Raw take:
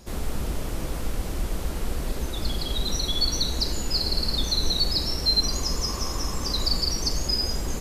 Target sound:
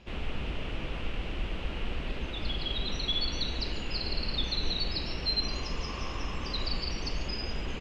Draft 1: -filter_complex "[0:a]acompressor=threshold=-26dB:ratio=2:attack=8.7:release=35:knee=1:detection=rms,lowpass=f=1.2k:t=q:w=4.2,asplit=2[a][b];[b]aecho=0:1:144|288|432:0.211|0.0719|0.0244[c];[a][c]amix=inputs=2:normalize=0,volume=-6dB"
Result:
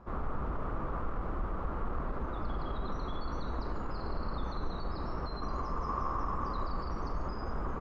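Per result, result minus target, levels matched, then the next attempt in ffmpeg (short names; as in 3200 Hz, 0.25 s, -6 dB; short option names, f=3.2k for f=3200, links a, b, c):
1000 Hz band +11.0 dB; compressor: peak gain reduction +6 dB
-filter_complex "[0:a]acompressor=threshold=-26dB:ratio=2:attack=8.7:release=35:knee=1:detection=rms,lowpass=f=2.8k:t=q:w=4.2,asplit=2[a][b];[b]aecho=0:1:144|288|432:0.211|0.0719|0.0244[c];[a][c]amix=inputs=2:normalize=0,volume=-6dB"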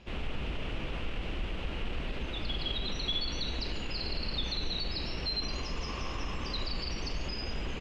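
compressor: peak gain reduction +6 dB
-filter_complex "[0:a]lowpass=f=2.8k:t=q:w=4.2,asplit=2[a][b];[b]aecho=0:1:144|288|432:0.211|0.0719|0.0244[c];[a][c]amix=inputs=2:normalize=0,volume=-6dB"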